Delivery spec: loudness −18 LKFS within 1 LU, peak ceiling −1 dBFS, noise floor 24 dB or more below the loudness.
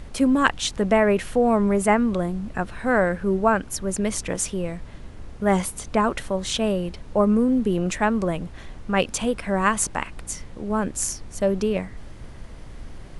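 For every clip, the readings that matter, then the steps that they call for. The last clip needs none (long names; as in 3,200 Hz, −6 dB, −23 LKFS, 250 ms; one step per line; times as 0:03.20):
mains hum 60 Hz; hum harmonics up to 300 Hz; level of the hum −47 dBFS; background noise floor −40 dBFS; target noise floor −47 dBFS; integrated loudness −23.0 LKFS; sample peak −1.5 dBFS; target loudness −18.0 LKFS
→ hum removal 60 Hz, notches 5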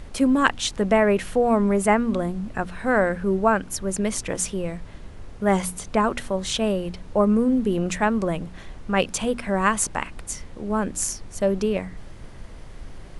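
mains hum none found; background noise floor −41 dBFS; target noise floor −47 dBFS
→ noise reduction from a noise print 6 dB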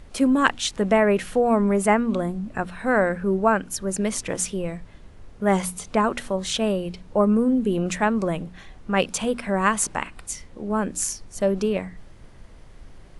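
background noise floor −46 dBFS; target noise floor −48 dBFS
→ noise reduction from a noise print 6 dB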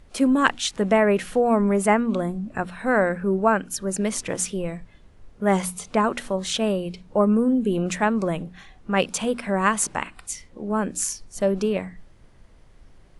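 background noise floor −52 dBFS; integrated loudness −23.5 LKFS; sample peak −2.0 dBFS; target loudness −18.0 LKFS
→ level +5.5 dB
brickwall limiter −1 dBFS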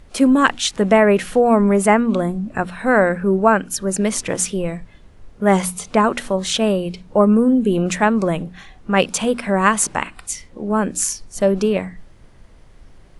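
integrated loudness −18.0 LKFS; sample peak −1.0 dBFS; background noise floor −46 dBFS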